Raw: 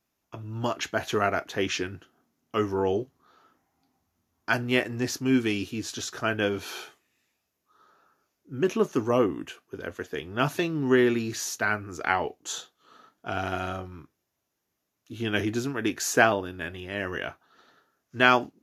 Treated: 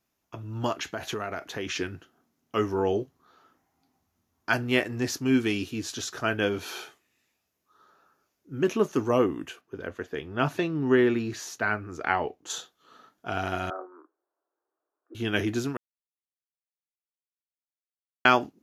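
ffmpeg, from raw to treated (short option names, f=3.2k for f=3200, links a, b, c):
-filter_complex "[0:a]asettb=1/sr,asplit=3[a][b][c];[a]atrim=end=0.774[d];[b]atrim=start=0.77:end=1.76,asetpts=PTS-STARTPTS,afade=t=in:d=0.004:c=qsin,afade=t=out:st=0.986:d=0.004:c=qsin,acompressor=threshold=-28dB:ratio=6:attack=3.2:release=140:knee=1:detection=peak[e];[c]atrim=start=1.756[f];[d][e]acrossfade=d=0.004:c1=hsin:c2=qsin[g];[g][f]acrossfade=d=0.004:c1=qsin:c2=hsin,asettb=1/sr,asplit=3[h][i][j];[h]atrim=end=9.614[k];[i]atrim=start=9.61:end=12.5,asetpts=PTS-STARTPTS,afade=t=in:d=0.004:c=qsin,afade=t=out:st=2.886:d=0.004:c=qsin,highshelf=f=4.4k:g=-10.5[l];[j]atrim=start=12.496[m];[k][l]acrossfade=d=0.004:c1=hsin:c2=qsin[n];[n][m]acrossfade=d=0.004:c1=qsin:c2=hsin,asettb=1/sr,asplit=3[o][p][q];[o]atrim=end=13.704[r];[p]atrim=start=13.7:end=15.15,asetpts=PTS-STARTPTS,afade=t=in:d=0.004:c=qsin,afade=t=out:st=1.446:d=0.004:c=qsin,asuperpass=centerf=700:order=12:qfactor=0.58[s];[q]atrim=start=15.146[t];[r][s]acrossfade=d=0.004:c1=hsin:c2=qsin[u];[u][t]acrossfade=d=0.004:c1=qsin:c2=hsin,asplit=3[v][w][x];[v]atrim=end=15.77,asetpts=PTS-STARTPTS,afade=t=out:st=15.766:d=0.004:c=hsin[y];[w]atrim=start=15.77:end=18.25,asetpts=PTS-STARTPTS,volume=0[z];[x]atrim=start=18.25,asetpts=PTS-STARTPTS,afade=t=in:d=0.004:c=hsin[aa];[y][z][aa]concat=n=3:v=0:a=1"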